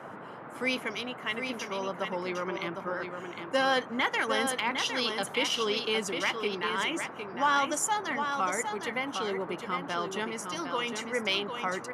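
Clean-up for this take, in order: clip repair -17 dBFS; noise print and reduce 30 dB; inverse comb 757 ms -6.5 dB

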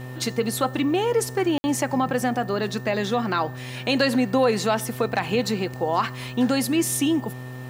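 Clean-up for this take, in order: clip repair -10 dBFS; de-hum 126.7 Hz, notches 11; band-stop 1.8 kHz, Q 30; room tone fill 1.58–1.64 s

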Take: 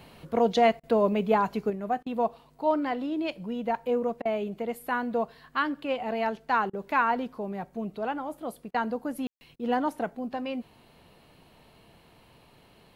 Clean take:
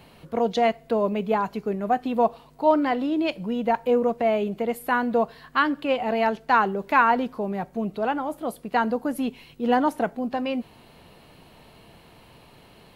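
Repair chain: room tone fill 9.27–9.41 s; interpolate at 0.80/2.03/4.22/6.70/8.71/9.56 s, 32 ms; trim 0 dB, from 1.70 s +6 dB

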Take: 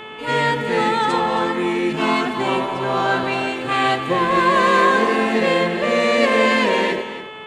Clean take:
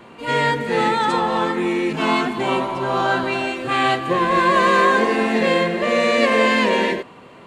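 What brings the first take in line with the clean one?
clip repair -4.5 dBFS; de-hum 432.9 Hz, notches 8; inverse comb 274 ms -13 dB

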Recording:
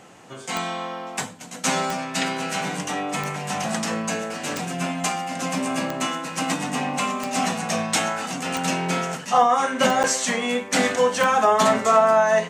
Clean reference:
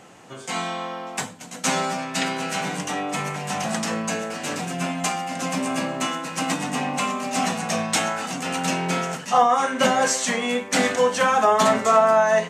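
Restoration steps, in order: de-click; interpolate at 10.03 s, 8.3 ms

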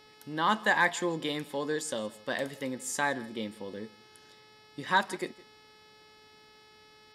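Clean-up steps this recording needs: de-hum 429 Hz, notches 13; inverse comb 163 ms -21.5 dB

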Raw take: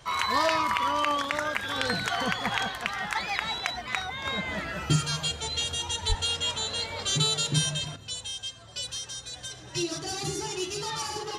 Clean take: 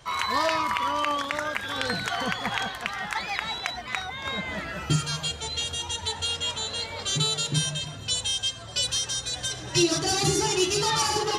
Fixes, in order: de-plosive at 6.08 s; trim 0 dB, from 7.96 s +8.5 dB

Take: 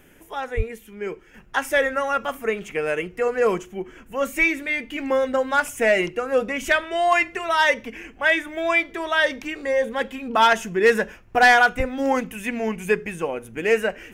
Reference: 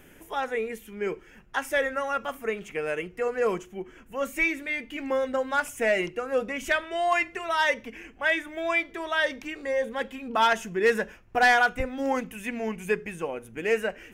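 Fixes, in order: 0.56–0.68 s: high-pass 140 Hz 24 dB/octave; trim 0 dB, from 1.34 s -5.5 dB

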